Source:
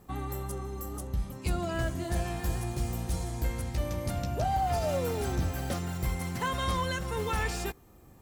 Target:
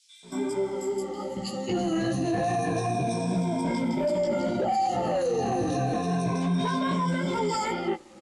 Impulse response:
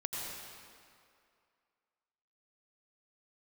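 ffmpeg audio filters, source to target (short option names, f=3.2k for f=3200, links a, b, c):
-filter_complex "[0:a]afftfilt=real='re*pow(10,21/40*sin(2*PI*(1.6*log(max(b,1)*sr/1024/100)/log(2)-(-0.3)*(pts-256)/sr)))':imag='im*pow(10,21/40*sin(2*PI*(1.6*log(max(b,1)*sr/1024/100)/log(2)-(-0.3)*(pts-256)/sr)))':win_size=1024:overlap=0.75,highpass=f=180:w=0.5412,highpass=f=180:w=1.3066,acrossover=split=820[a][b];[a]dynaudnorm=f=450:g=7:m=8dB[c];[c][b]amix=inputs=2:normalize=0,acrusher=bits=8:mix=0:aa=0.000001,acompressor=threshold=-24dB:ratio=8,asoftclip=type=hard:threshold=-23dB,flanger=delay=15.5:depth=3.9:speed=2.5,equalizer=f=1.4k:w=1.9:g=-5.5,acrossover=split=3200[d][e];[d]adelay=230[f];[f][e]amix=inputs=2:normalize=0,alimiter=level_in=3.5dB:limit=-24dB:level=0:latency=1:release=19,volume=-3.5dB,lowpass=6.3k,volume=8.5dB" -ar 24000 -c:a aac -b:a 96k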